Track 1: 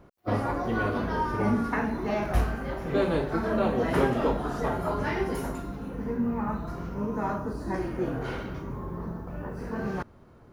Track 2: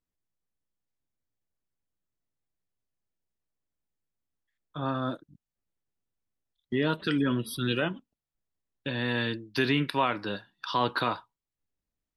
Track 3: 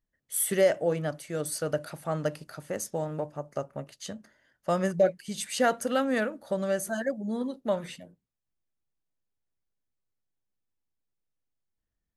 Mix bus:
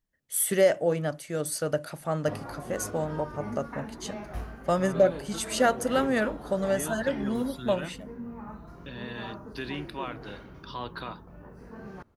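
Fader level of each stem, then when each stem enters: -11.5, -10.0, +1.5 dB; 2.00, 0.00, 0.00 s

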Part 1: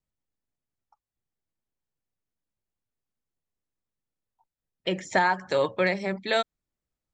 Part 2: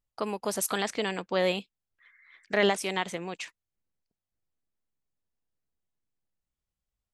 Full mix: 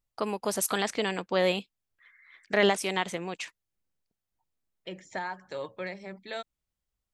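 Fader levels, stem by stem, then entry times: -12.5, +1.0 dB; 0.00, 0.00 s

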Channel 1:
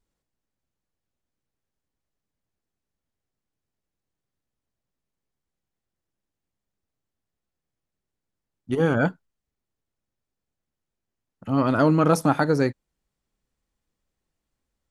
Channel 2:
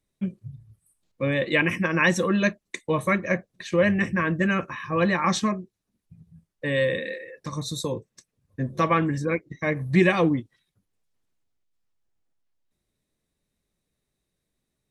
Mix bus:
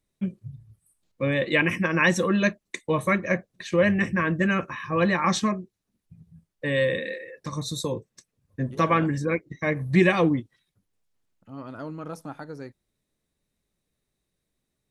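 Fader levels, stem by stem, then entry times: -17.5, 0.0 dB; 0.00, 0.00 s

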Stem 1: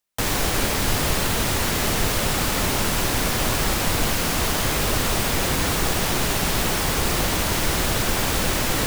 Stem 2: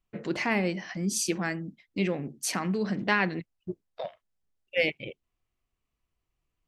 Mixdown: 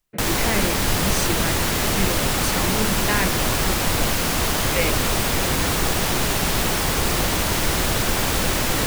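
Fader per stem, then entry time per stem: +1.0, +1.0 dB; 0.00, 0.00 s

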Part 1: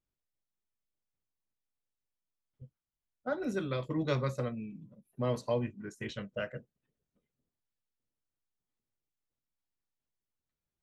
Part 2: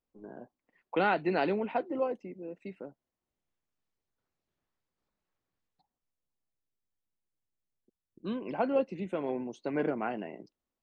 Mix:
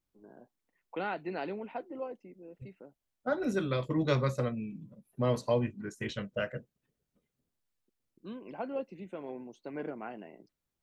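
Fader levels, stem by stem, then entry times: +3.0, -8.0 dB; 0.00, 0.00 s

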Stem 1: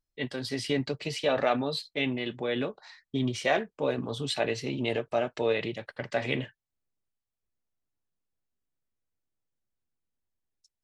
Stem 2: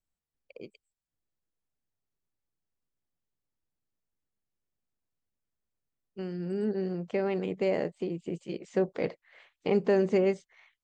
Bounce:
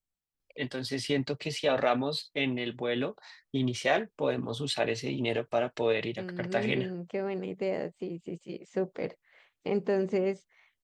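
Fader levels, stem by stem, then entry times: -0.5, -3.5 dB; 0.40, 0.00 s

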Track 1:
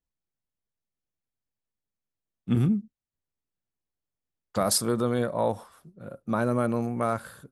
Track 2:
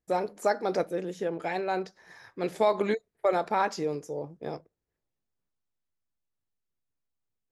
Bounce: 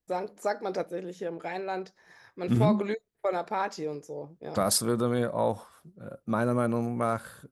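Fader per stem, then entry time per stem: -1.0, -3.5 dB; 0.00, 0.00 s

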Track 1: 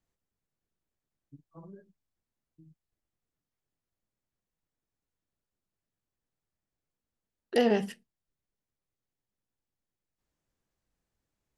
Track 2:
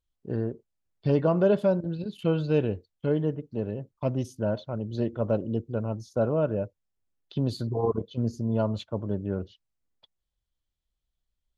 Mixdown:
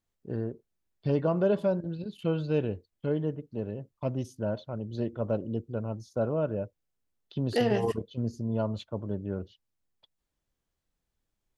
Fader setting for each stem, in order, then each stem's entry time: -1.5, -3.5 dB; 0.00, 0.00 s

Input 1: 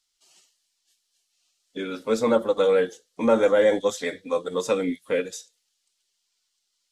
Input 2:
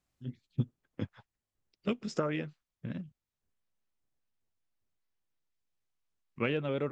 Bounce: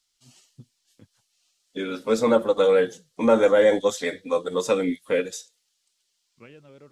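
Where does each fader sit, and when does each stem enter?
+1.5, -16.5 dB; 0.00, 0.00 s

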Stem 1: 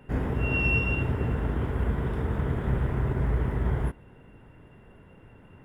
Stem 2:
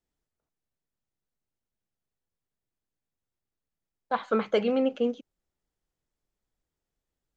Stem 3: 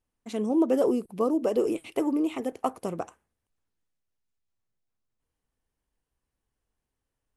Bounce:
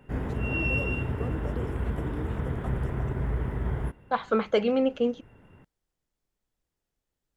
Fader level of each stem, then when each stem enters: -3.0, +1.0, -14.5 dB; 0.00, 0.00, 0.00 s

